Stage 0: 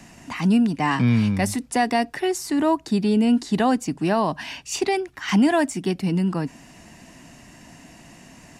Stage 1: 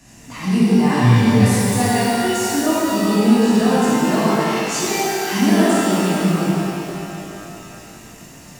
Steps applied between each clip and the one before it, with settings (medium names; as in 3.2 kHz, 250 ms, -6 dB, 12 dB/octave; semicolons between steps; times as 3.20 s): tone controls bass +5 dB, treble +7 dB; pitch-shifted reverb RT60 2.8 s, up +12 st, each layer -8 dB, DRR -11 dB; trim -9 dB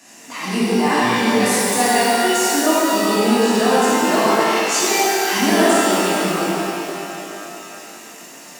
Bessel high-pass 370 Hz, order 4; trim +4.5 dB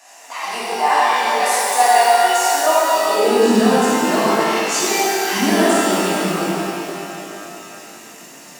high-pass sweep 730 Hz -> 100 Hz, 3.06–3.97 s; trim -1 dB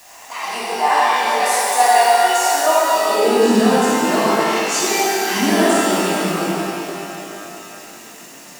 reverse echo 210 ms -20.5 dB; word length cut 8-bit, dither triangular